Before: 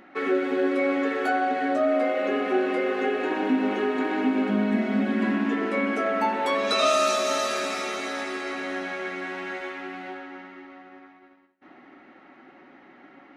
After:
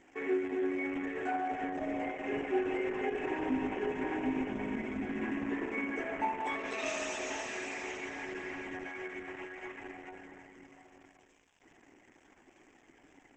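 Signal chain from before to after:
surface crackle 360 per second −37 dBFS
phaser with its sweep stopped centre 860 Hz, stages 8
level −6.5 dB
Opus 10 kbit/s 48,000 Hz

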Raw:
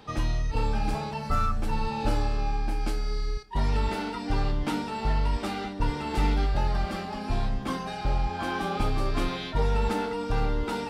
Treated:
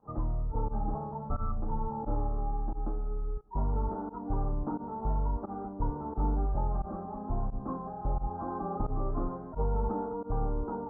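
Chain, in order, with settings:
Butterworth low-pass 1,200 Hz 48 dB per octave
fake sidechain pumping 88 BPM, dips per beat 1, −23 dB, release 76 ms
level −4.5 dB

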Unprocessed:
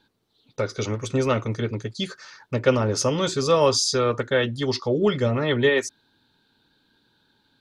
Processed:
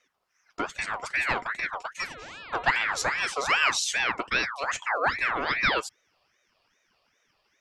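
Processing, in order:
0:01.97–0:03.22: hum with harmonics 400 Hz, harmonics 8, −38 dBFS −6 dB per octave
ring modulator whose carrier an LFO sweeps 1,500 Hz, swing 45%, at 2.5 Hz
level −2.5 dB

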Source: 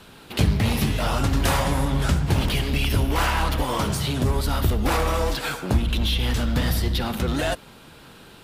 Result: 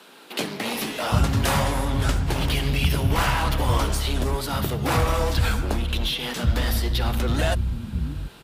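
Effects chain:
multiband delay without the direct sound highs, lows 730 ms, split 230 Hz

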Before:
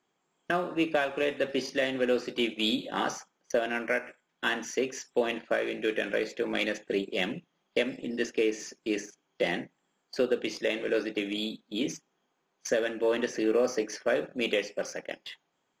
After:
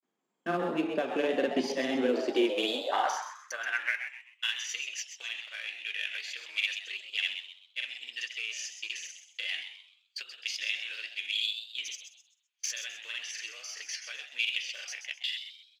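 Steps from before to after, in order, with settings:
in parallel at −4.5 dB: soft clipping −32.5 dBFS, distortion −5 dB
on the sum: downward compressor 3 to 1, threshold −28 dBFS, peak gain reduction 6.5 dB
high-pass filter sweep 220 Hz → 2,700 Hz, 0:01.97–0:04.24
granular cloud, spray 39 ms, pitch spread up and down by 0 semitones
noise gate −60 dBFS, range −11 dB
on a send: echo with shifted repeats 129 ms, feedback 33%, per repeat +150 Hz, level −9 dB

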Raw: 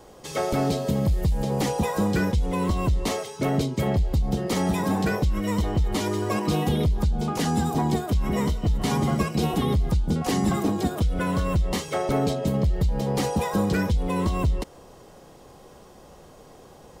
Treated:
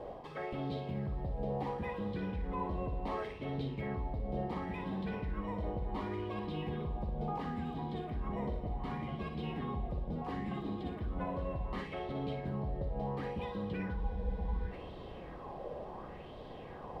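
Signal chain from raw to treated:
high-shelf EQ 4,700 Hz +5.5 dB
notch filter 1,400 Hz, Q 8
reversed playback
downward compressor 16 to 1, threshold −36 dBFS, peak gain reduction 18 dB
reversed playback
high-frequency loss of the air 440 metres
flutter between parallel walls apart 9.9 metres, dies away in 0.49 s
on a send at −11 dB: convolution reverb RT60 4.6 s, pre-delay 117 ms
on the sum: frozen spectrum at 0:13.98, 0.74 s
auto-filter bell 0.7 Hz 570–3,700 Hz +11 dB

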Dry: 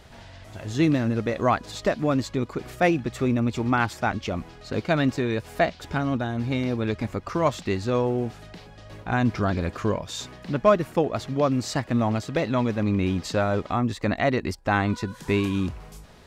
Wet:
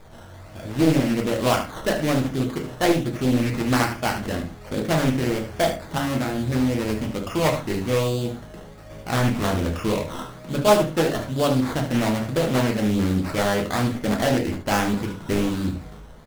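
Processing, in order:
0:05.85–0:06.34: high-pass filter 110 Hz
in parallel at −4 dB: hard clipping −17.5 dBFS, distortion −13 dB
on the sum: sample-and-hold swept by an LFO 15×, swing 60% 1.2 Hz
single-tap delay 74 ms −10 dB
on a send at −2 dB: convolution reverb RT60 0.30 s, pre-delay 3 ms
on the sum: highs frequency-modulated by the lows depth 0.59 ms
level −5 dB

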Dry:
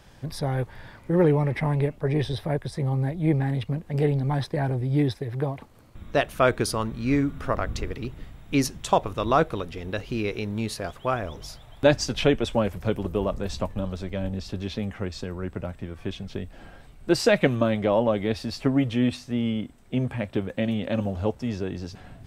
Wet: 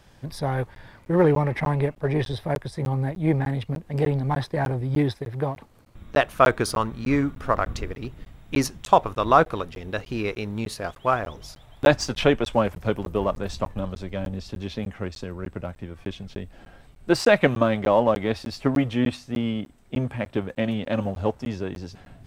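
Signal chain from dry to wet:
dynamic equaliser 1,100 Hz, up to +6 dB, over −37 dBFS, Q 0.83
in parallel at −10 dB: dead-zone distortion −32 dBFS
on the sum: regular buffer underruns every 0.30 s, samples 512, zero, from 0:00.75
level −2 dB

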